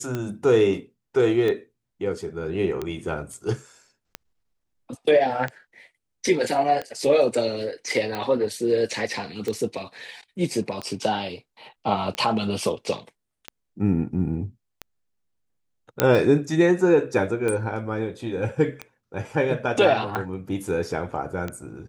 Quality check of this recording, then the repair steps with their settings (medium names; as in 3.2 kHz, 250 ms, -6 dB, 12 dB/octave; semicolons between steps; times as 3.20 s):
tick 45 rpm -15 dBFS
16.00 s: pop -2 dBFS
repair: de-click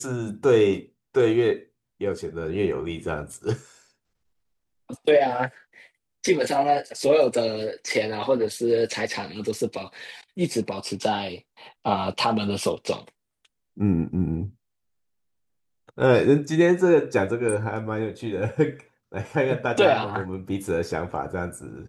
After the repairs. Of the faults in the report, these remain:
nothing left